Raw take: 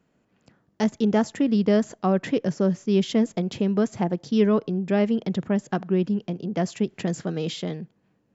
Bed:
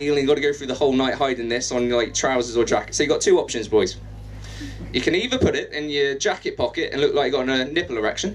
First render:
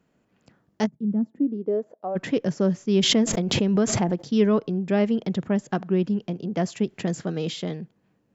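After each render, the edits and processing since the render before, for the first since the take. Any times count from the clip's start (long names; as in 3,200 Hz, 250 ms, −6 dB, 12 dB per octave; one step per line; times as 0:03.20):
0:00.85–0:02.15: resonant band-pass 140 Hz → 690 Hz, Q 3.5
0:02.98–0:04.25: background raised ahead of every attack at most 33 dB per second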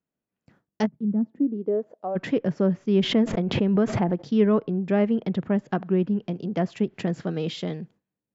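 treble cut that deepens with the level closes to 2,400 Hz, closed at −21 dBFS
noise gate with hold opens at −47 dBFS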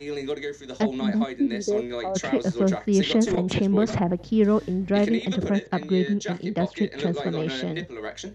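mix in bed −11.5 dB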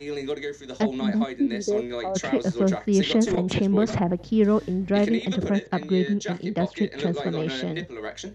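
no processing that can be heard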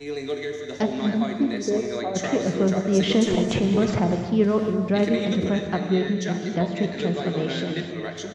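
single-tap delay 612 ms −18 dB
reverb whose tail is shaped and stops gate 340 ms flat, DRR 4.5 dB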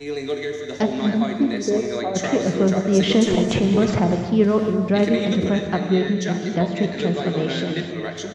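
level +3 dB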